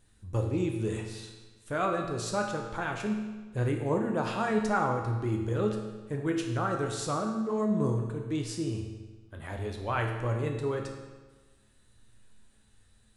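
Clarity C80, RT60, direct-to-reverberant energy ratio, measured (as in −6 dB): 6.5 dB, 1.3 s, 2.0 dB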